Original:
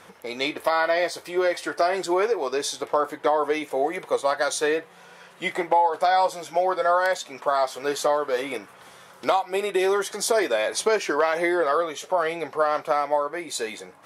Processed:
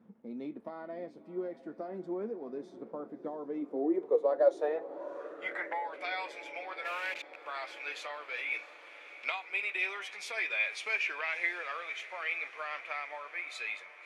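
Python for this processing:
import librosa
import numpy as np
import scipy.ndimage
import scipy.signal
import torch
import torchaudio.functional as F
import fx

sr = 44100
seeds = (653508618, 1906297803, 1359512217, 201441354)

y = fx.delta_hold(x, sr, step_db=-27.0, at=(6.84, 7.45), fade=0.02)
y = fx.filter_sweep_bandpass(y, sr, from_hz=220.0, to_hz=2400.0, start_s=3.47, end_s=6.02, q=7.8)
y = fx.echo_diffused(y, sr, ms=645, feedback_pct=66, wet_db=-16)
y = y * 10.0 ** (6.0 / 20.0)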